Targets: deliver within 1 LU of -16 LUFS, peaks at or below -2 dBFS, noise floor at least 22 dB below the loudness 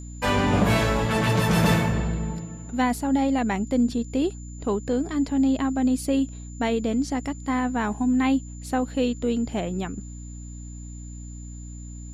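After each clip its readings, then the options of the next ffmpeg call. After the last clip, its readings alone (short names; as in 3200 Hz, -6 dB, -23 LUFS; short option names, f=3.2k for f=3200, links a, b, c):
hum 60 Hz; harmonics up to 300 Hz; hum level -35 dBFS; steady tone 7100 Hz; tone level -47 dBFS; loudness -24.5 LUFS; peak -9.5 dBFS; loudness target -16.0 LUFS
-> -af "bandreject=f=60:t=h:w=4,bandreject=f=120:t=h:w=4,bandreject=f=180:t=h:w=4,bandreject=f=240:t=h:w=4,bandreject=f=300:t=h:w=4"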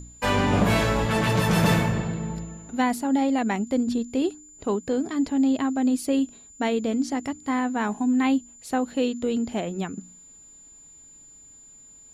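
hum none; steady tone 7100 Hz; tone level -47 dBFS
-> -af "bandreject=f=7.1k:w=30"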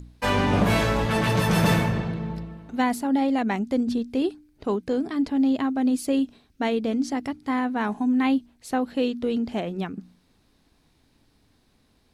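steady tone none; loudness -25.0 LUFS; peak -9.5 dBFS; loudness target -16.0 LUFS
-> -af "volume=9dB,alimiter=limit=-2dB:level=0:latency=1"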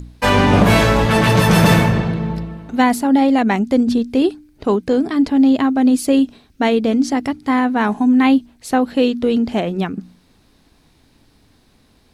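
loudness -16.0 LUFS; peak -2.0 dBFS; noise floor -55 dBFS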